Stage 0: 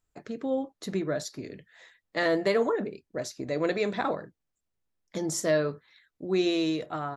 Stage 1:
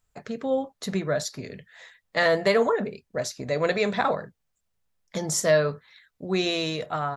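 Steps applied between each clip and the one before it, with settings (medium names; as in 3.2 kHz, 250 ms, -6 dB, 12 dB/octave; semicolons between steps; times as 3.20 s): peaking EQ 320 Hz -12 dB 0.48 oct; trim +6 dB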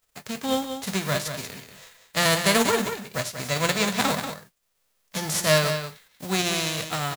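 formants flattened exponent 0.3; delay 187 ms -8.5 dB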